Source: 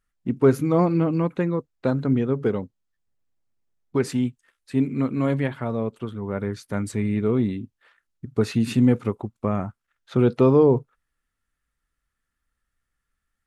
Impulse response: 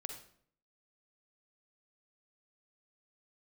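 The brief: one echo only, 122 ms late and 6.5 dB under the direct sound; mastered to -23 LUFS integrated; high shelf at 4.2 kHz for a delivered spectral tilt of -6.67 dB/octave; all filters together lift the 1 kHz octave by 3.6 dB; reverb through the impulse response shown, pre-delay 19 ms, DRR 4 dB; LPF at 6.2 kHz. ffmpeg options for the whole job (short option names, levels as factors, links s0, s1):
-filter_complex "[0:a]lowpass=6200,equalizer=f=1000:t=o:g=4,highshelf=f=4200:g=6,aecho=1:1:122:0.473,asplit=2[s0][s1];[1:a]atrim=start_sample=2205,adelay=19[s2];[s1][s2]afir=irnorm=-1:irlink=0,volume=0.841[s3];[s0][s3]amix=inputs=2:normalize=0,volume=0.75"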